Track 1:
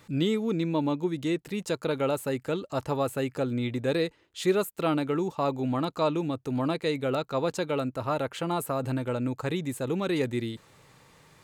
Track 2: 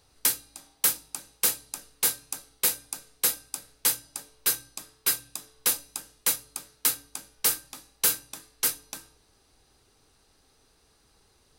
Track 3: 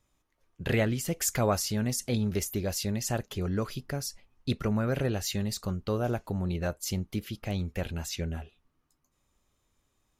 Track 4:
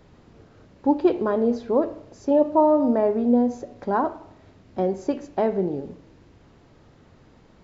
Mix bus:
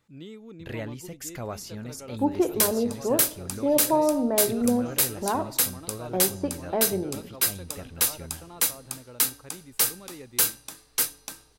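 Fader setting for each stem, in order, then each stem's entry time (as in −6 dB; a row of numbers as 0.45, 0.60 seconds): −16.5, +1.0, −8.5, −4.5 decibels; 0.00, 2.35, 0.00, 1.35 seconds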